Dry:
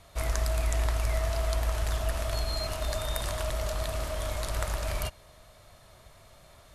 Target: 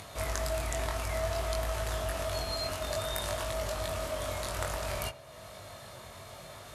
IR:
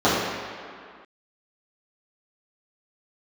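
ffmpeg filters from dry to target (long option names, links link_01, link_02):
-filter_complex "[0:a]highpass=87,acompressor=mode=upward:threshold=-37dB:ratio=2.5,flanger=delay=20:depth=2.7:speed=0.57,asplit=2[link_01][link_02];[1:a]atrim=start_sample=2205,asetrate=52920,aresample=44100[link_03];[link_02][link_03]afir=irnorm=-1:irlink=0,volume=-35.5dB[link_04];[link_01][link_04]amix=inputs=2:normalize=0,volume=2.5dB"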